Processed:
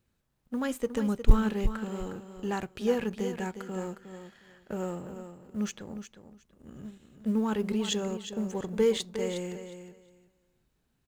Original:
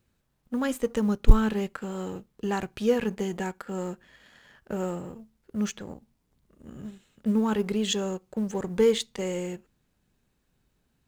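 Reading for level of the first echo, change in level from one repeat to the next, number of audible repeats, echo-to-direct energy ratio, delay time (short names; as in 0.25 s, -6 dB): -10.0 dB, -15.0 dB, 2, -10.0 dB, 0.36 s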